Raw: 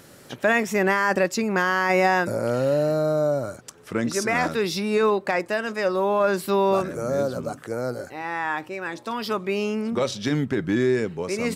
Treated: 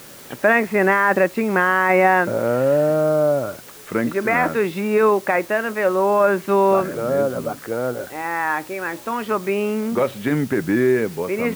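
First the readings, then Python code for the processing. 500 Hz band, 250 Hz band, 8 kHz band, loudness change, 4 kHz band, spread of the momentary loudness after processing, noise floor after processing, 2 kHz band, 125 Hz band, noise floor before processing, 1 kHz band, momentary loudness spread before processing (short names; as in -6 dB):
+4.5 dB, +3.5 dB, -2.0 dB, +4.5 dB, -4.5 dB, 10 LU, -41 dBFS, +4.5 dB, +2.0 dB, -48 dBFS, +5.0 dB, 10 LU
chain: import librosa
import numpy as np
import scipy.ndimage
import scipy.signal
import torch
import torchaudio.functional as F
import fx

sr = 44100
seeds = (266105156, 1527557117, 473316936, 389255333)

p1 = scipy.signal.sosfilt(scipy.signal.butter(4, 2500.0, 'lowpass', fs=sr, output='sos'), x)
p2 = fx.low_shelf(p1, sr, hz=120.0, db=-8.5)
p3 = fx.quant_dither(p2, sr, seeds[0], bits=6, dither='triangular')
p4 = p2 + F.gain(torch.from_numpy(p3), -9.0).numpy()
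y = F.gain(torch.from_numpy(p4), 2.5).numpy()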